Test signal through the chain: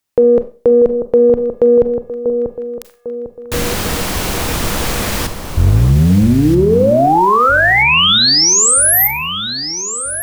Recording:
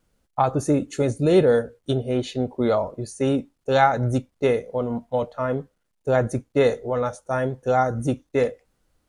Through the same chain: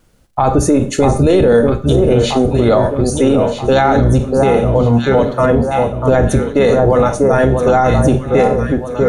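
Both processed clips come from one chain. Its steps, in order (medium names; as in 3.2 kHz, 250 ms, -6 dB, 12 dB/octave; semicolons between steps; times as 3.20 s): octave divider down 1 oct, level -3 dB; on a send: echo whose repeats swap between lows and highs 640 ms, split 1.3 kHz, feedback 64%, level -7 dB; on the sum: Schroeder reverb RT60 0.36 s, combs from 30 ms, DRR 11.5 dB; loudness maximiser +16 dB; trim -2 dB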